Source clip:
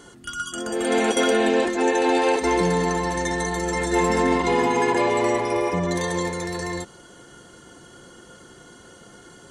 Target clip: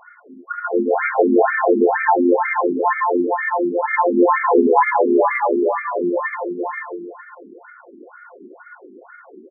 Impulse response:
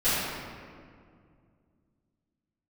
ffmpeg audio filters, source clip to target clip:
-af "aecho=1:1:110|247.5|419.4|634.2|902.8:0.631|0.398|0.251|0.158|0.1,afftfilt=real='re*between(b*sr/1024,280*pow(1700/280,0.5+0.5*sin(2*PI*2.1*pts/sr))/1.41,280*pow(1700/280,0.5+0.5*sin(2*PI*2.1*pts/sr))*1.41)':imag='im*between(b*sr/1024,280*pow(1700/280,0.5+0.5*sin(2*PI*2.1*pts/sr))/1.41,280*pow(1700/280,0.5+0.5*sin(2*PI*2.1*pts/sr))*1.41)':win_size=1024:overlap=0.75,volume=8.5dB"

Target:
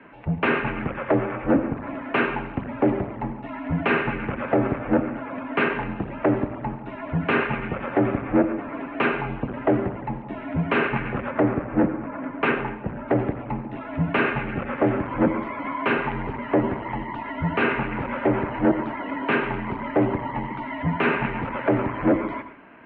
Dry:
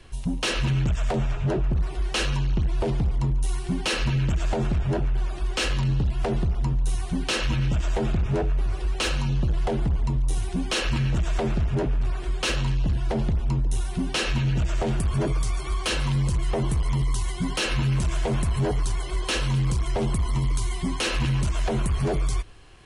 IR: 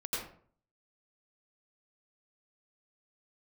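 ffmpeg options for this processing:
-filter_complex "[0:a]asettb=1/sr,asplit=3[a][b][c];[a]atrim=end=11.304[d];[b]atrim=start=11.3:end=13.08,asetpts=PTS-STARTPTS,afade=t=in:d=0.004:c=qsin,afade=t=out:st=1.776:d=0.004:c=qsin,adynamicsmooth=sensitivity=4:basefreq=1.6k[e];[c]atrim=start=13.076[f];[d][e]acrossfade=d=0.004:c1=hsin:c2=qsin[g];[g][f]acrossfade=d=0.004:c1=qsin:c2=hsin,asplit=2[h][i];[1:a]atrim=start_sample=2205[j];[i][j]afir=irnorm=-1:irlink=0,volume=-13dB[k];[h][k]amix=inputs=2:normalize=0,highpass=f=260:t=q:w=0.5412,highpass=f=260:t=q:w=1.307,lowpass=f=2.3k:t=q:w=0.5176,lowpass=f=2.3k:t=q:w=0.7071,lowpass=f=2.3k:t=q:w=1.932,afreqshift=-98,volume=7.5dB"

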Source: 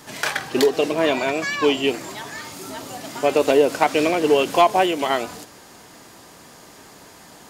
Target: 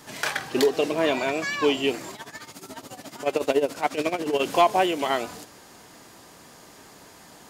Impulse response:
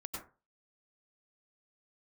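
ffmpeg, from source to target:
-filter_complex "[0:a]asplit=3[a][b][c];[a]afade=t=out:st=2.11:d=0.02[d];[b]tremolo=f=14:d=0.81,afade=t=in:st=2.11:d=0.02,afade=t=out:st=4.39:d=0.02[e];[c]afade=t=in:st=4.39:d=0.02[f];[d][e][f]amix=inputs=3:normalize=0,volume=-3.5dB"

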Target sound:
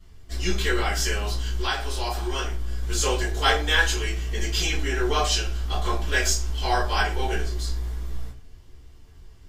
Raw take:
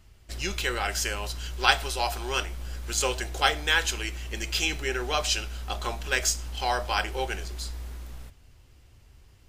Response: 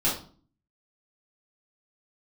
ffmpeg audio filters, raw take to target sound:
-filter_complex "[1:a]atrim=start_sample=2205,asetrate=57330,aresample=44100[a];[0:a][a]afir=irnorm=-1:irlink=0,asettb=1/sr,asplit=3[b][c][d];[b]atrim=end=1.614[e];[c]atrim=start=1.61:end=2.83,asetpts=PTS-STARTPTS,afade=t=in:d=0.004:c=qsin,afade=t=out:st=1.216:d=0.004:c=qsin,acompressor=threshold=-16dB:ratio=6[f];[d]atrim=start=2.826[g];[e][f]acrossfade=d=0.004:c1=hsin:c2=qsin[h];[h][g]acrossfade=d=0.004:c1=qsin:c2=hsin,volume=-6.5dB"

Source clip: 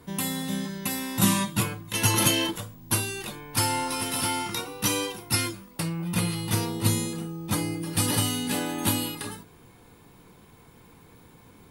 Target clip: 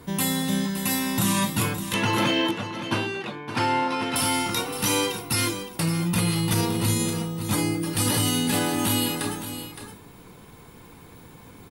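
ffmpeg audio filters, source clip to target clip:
-filter_complex "[0:a]asettb=1/sr,asplit=3[a][b][c];[a]atrim=end=1.944[d];[b]atrim=start=1.94:end=4.16,asetpts=PTS-STARTPTS,afade=t=in:d=0.004:c=qsin,afade=t=out:st=2.216:d=0.004:c=qsin,highpass=150,lowpass=2.8k[e];[c]atrim=start=4.156[f];[d][e]acrossfade=d=0.004:c1=hsin:c2=qsin[g];[g][f]acrossfade=d=0.004:c1=qsin:c2=hsin,alimiter=limit=-19dB:level=0:latency=1:release=34,aecho=1:1:566:0.299,volume=5.5dB"

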